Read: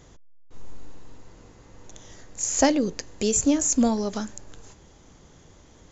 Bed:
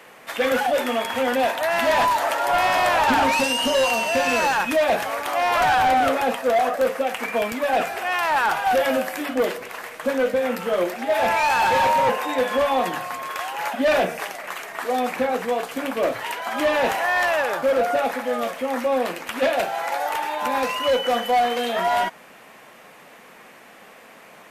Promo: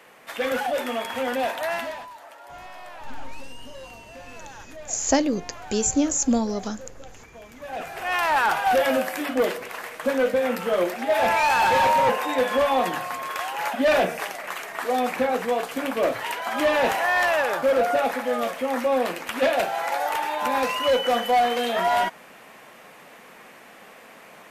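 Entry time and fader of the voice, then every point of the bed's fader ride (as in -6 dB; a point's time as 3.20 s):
2.50 s, -0.5 dB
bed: 1.73 s -4.5 dB
2.06 s -22.5 dB
7.40 s -22.5 dB
8.15 s -0.5 dB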